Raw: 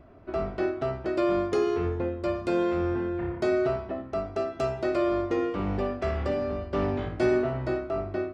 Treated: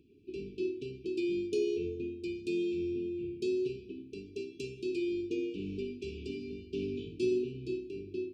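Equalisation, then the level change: high-pass 330 Hz 6 dB/octave; brick-wall FIR band-stop 460–2300 Hz; -3.0 dB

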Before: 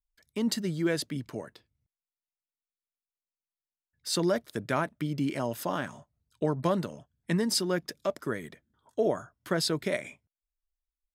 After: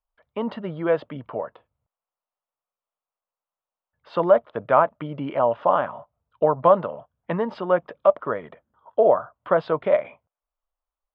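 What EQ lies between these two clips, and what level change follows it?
Chebyshev low-pass 3.1 kHz, order 4; high-order bell 790 Hz +14.5 dB; 0.0 dB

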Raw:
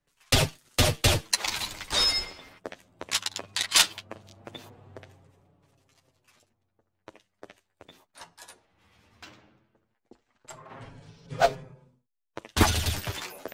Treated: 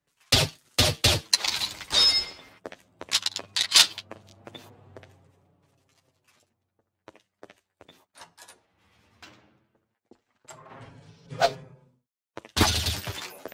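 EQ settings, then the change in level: high-pass 56 Hz; dynamic bell 4.3 kHz, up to +7 dB, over -40 dBFS, Q 1.4; -1.0 dB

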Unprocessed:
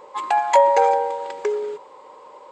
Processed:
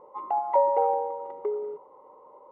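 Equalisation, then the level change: Savitzky-Golay filter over 65 samples; distance through air 350 m; -5.5 dB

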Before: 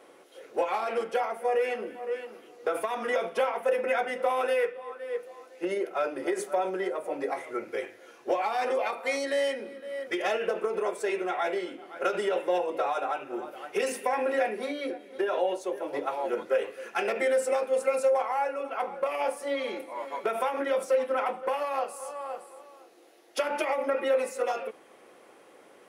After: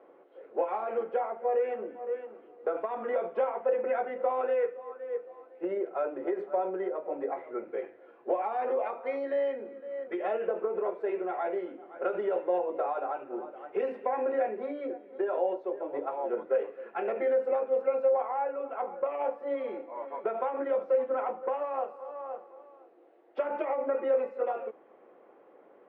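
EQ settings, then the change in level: band-pass filter 540 Hz, Q 0.63; distance through air 400 m; 0.0 dB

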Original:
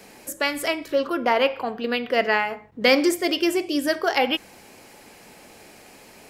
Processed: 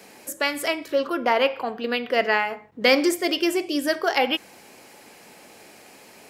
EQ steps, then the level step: high-pass 170 Hz 6 dB/octave; 0.0 dB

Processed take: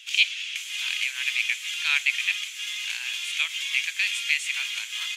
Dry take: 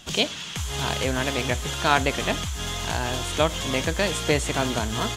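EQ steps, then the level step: ladder high-pass 2.2 kHz, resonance 70%; +7.5 dB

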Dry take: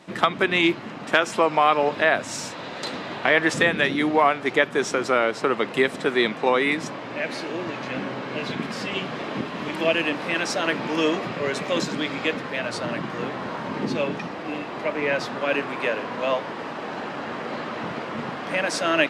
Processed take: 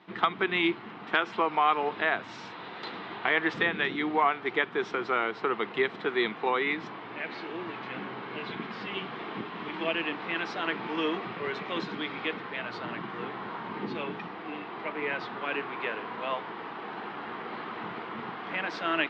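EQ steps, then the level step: cabinet simulation 140–3500 Hz, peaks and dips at 150 Hz -7 dB, 260 Hz -9 dB, 560 Hz -8 dB, 1.7 kHz -3 dB, 2.6 kHz -4 dB; peaking EQ 590 Hz -5.5 dB 0.42 oct; -3.5 dB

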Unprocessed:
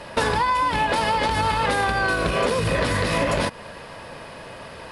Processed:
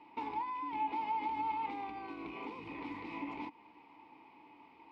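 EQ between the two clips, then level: vowel filter u; distance through air 83 m; peaking EQ 160 Hz -7 dB 1.7 oct; -4.5 dB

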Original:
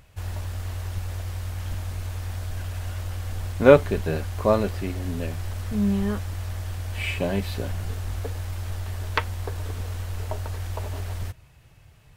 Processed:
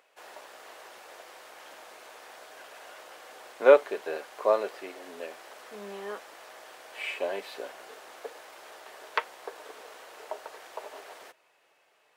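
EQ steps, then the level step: high-pass 420 Hz 24 dB/octave; treble shelf 3.4 kHz -7.5 dB; peaking EQ 13 kHz -3 dB 0.41 oct; -2.0 dB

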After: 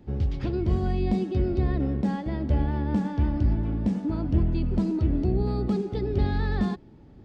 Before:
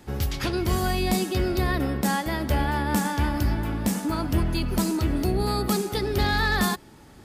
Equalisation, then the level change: tape spacing loss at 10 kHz 38 dB; peaking EQ 1.3 kHz -11 dB 2.1 oct; +2.0 dB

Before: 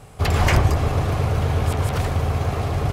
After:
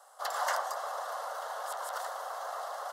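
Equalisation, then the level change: rippled Chebyshev high-pass 400 Hz, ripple 3 dB; static phaser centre 1 kHz, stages 4; -3.5 dB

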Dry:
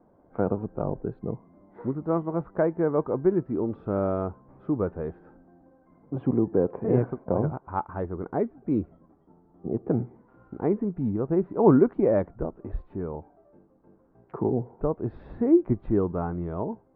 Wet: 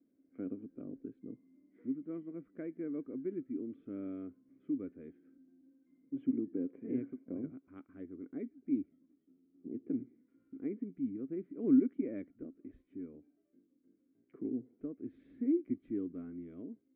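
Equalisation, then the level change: vowel filter i; peaking EQ 170 Hz -4.5 dB 1.6 oct; 0.0 dB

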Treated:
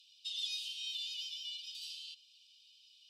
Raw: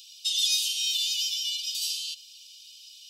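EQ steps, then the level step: band-pass filter 7.7 kHz, Q 1.1; distance through air 430 m; treble shelf 9.3 kHz +6 dB; +5.0 dB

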